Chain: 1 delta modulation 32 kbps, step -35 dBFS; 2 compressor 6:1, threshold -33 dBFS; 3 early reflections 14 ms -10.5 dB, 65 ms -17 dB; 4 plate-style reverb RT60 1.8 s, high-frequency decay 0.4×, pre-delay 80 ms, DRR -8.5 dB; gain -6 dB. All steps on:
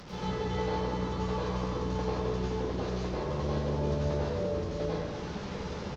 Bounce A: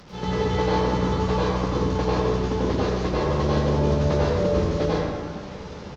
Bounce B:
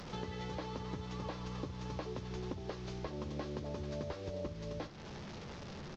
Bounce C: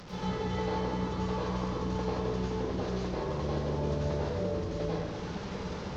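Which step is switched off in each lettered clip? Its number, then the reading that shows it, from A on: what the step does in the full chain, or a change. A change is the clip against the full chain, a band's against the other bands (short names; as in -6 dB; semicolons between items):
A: 2, mean gain reduction 7.0 dB; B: 4, crest factor change +3.5 dB; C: 3, momentary loudness spread change -1 LU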